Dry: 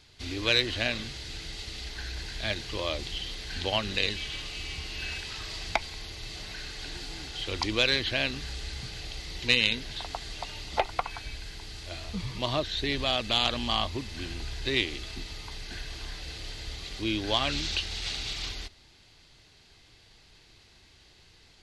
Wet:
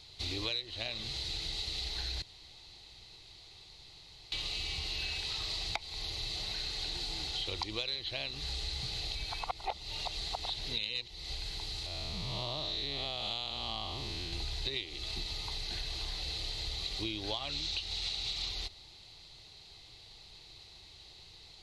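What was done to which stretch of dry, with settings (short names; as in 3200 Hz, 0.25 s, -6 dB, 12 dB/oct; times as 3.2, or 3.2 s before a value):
2.22–4.32 room tone
9.15–11.35 reverse
11.86–14.33 time blur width 0.231 s
whole clip: thirty-one-band EQ 250 Hz -10 dB, 800 Hz +4 dB, 1600 Hz -10 dB, 4000 Hz +10 dB; compressor 10:1, threshold -33 dBFS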